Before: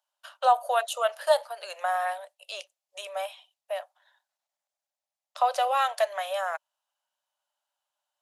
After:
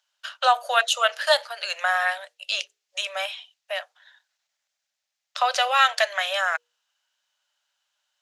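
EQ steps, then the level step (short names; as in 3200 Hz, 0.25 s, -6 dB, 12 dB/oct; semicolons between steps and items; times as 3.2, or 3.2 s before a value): band shelf 3100 Hz +12.5 dB 2.7 oct; notches 60/120/180/240/300/360/420/480 Hz; 0.0 dB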